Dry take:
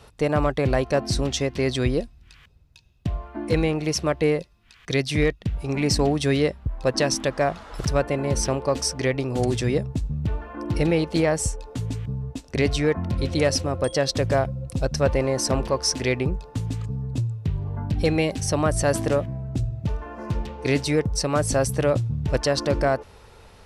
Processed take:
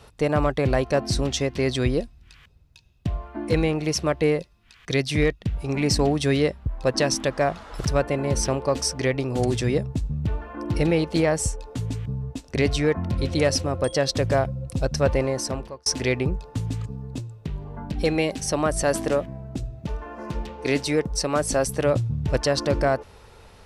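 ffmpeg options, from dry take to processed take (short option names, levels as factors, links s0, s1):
-filter_complex "[0:a]asettb=1/sr,asplit=3[s0][s1][s2];[s0]atrim=end=16.864[s3];[s1]atrim=start=16.86:end=21.85,asetpts=PTS-STARTPTS,afade=t=in:d=0.004:c=qsin,afade=t=out:st=4.986:d=0.004:c=qsin,equalizer=f=99:t=o:w=0.77:g=-14[s4];[s2]atrim=start=21.846[s5];[s3][s4]acrossfade=d=0.004:c1=hsin:c2=qsin[s6];[s6][s5]acrossfade=d=0.004:c1=qsin:c2=hsin,asplit=2[s7][s8];[s7]atrim=end=15.86,asetpts=PTS-STARTPTS,afade=t=out:st=15.19:d=0.67[s9];[s8]atrim=start=15.86,asetpts=PTS-STARTPTS,afade=t=in:d=0.004:c=hsin[s10];[s9][s10]concat=n=2:v=0:a=1"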